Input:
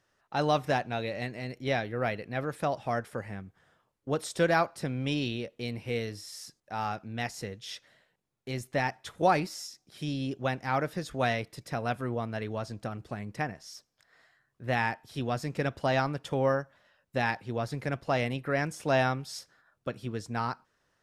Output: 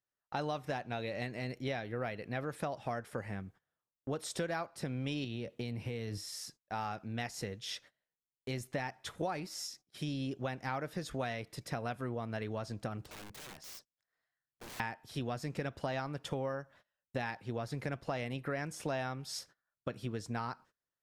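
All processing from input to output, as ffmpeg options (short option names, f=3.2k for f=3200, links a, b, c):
-filter_complex "[0:a]asettb=1/sr,asplit=3[a][b][c];[a]atrim=end=5.244[d];[b]atrim=start=5.24:end=6.18,asetpts=PTS-STARTPTS,afade=t=in:d=0.004:c=qsin,afade=t=out:st=0.936:d=0.004:c=qsin,highpass=78,lowshelf=f=230:g=8.5,acompressor=threshold=-32dB:ratio=6:attack=3.2:release=140:knee=1:detection=peak[e];[c]atrim=start=6.176[f];[d][e]acrossfade=d=0.004:c1=hsin:c2=qsin[g];[g][f]acrossfade=d=0.004:c1=qsin:c2=hsin,asettb=1/sr,asplit=3[h][i][j];[h]atrim=end=13.044[k];[i]atrim=start=13.04:end=14.8,asetpts=PTS-STARTPTS,afade=t=in:d=0.004:c=qsin,afade=t=out:st=1.756:d=0.004:c=qsin,acompressor=threshold=-42dB:ratio=3:attack=3.2:release=140:knee=1:detection=peak,aeval=exprs='(mod(150*val(0)+1,2)-1)/150':c=same[l];[j]atrim=start=14.796[m];[k][l]acrossfade=d=0.004:c1=hsin:c2=qsin[n];[n][m]acrossfade=d=0.004:c1=qsin:c2=hsin,agate=range=-24dB:threshold=-54dB:ratio=16:detection=peak,acompressor=threshold=-34dB:ratio=6"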